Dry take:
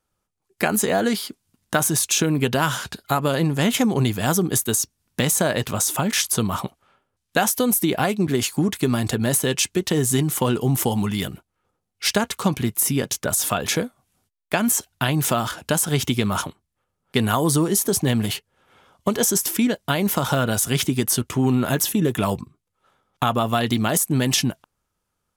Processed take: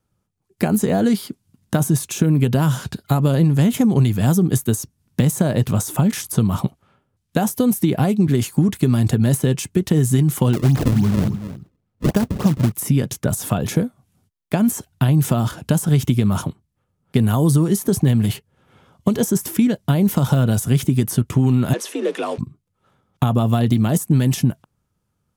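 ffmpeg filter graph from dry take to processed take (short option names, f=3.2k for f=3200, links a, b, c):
-filter_complex "[0:a]asettb=1/sr,asplit=3[a][b][c];[a]atrim=end=10.534[d];[b]atrim=start=10.53:end=12.72,asetpts=PTS-STARTPTS,afade=t=in:d=0.004:c=qsin,afade=t=out:st=2.186:d=0.004:c=qsin,aecho=1:1:279:0.2,atrim=end_sample=96579,acrusher=samples=33:mix=1:aa=0.000001:lfo=1:lforange=52.8:lforate=3.5[e];[c]atrim=start=12.716[f];[d][e]acrossfade=d=0.004:c1=hsin:c2=qsin[g];[g][f]acrossfade=d=0.004:c1=qsin:c2=hsin,asettb=1/sr,asplit=3[h][i][j];[h]atrim=end=21.734[k];[i]atrim=start=21.73:end=22.38,asetpts=PTS-STARTPTS,afade=t=in:d=0.004:c=qsin,afade=t=out:st=0.646:d=0.004:c=qsin,aeval=exprs='val(0)+0.5*0.0282*sgn(val(0))':c=same,afreqshift=54,highpass=f=400:w=0.5412,highpass=f=400:w=1.3066,equalizer=f=810:t=q:w=4:g=-4,equalizer=f=2.5k:t=q:w=4:g=4,equalizer=f=7.5k:t=q:w=4:g=-6,lowpass=f=8.8k:w=0.5412,lowpass=f=8.8k:w=1.3066[l];[j]atrim=start=22.376[m];[k][l]acrossfade=d=0.004:c1=hsin:c2=qsin[n];[n][m]acrossfade=d=0.004:c1=qsin:c2=hsin,equalizer=f=130:t=o:w=2.5:g=14,acrossover=split=1100|2400|7400[o][p][q][r];[o]acompressor=threshold=-11dB:ratio=4[s];[p]acompressor=threshold=-37dB:ratio=4[t];[q]acompressor=threshold=-35dB:ratio=4[u];[r]acompressor=threshold=-25dB:ratio=4[v];[s][t][u][v]amix=inputs=4:normalize=0,volume=-1.5dB"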